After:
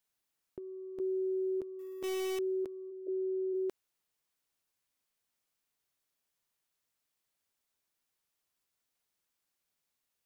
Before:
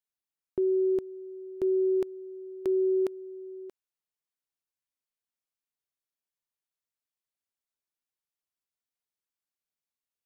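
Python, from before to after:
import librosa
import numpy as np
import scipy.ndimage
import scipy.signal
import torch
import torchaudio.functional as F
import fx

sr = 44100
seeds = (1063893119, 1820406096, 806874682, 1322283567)

y = fx.delta_hold(x, sr, step_db=-41.5, at=(1.79, 2.39))
y = fx.over_compress(y, sr, threshold_db=-34.0, ratio=-0.5)
y = fx.cheby1_bandpass(y, sr, low_hz=280.0, high_hz=630.0, order=5, at=(2.9, 3.53), fade=0.02)
y = y * 10.0 ** (1.0 / 20.0)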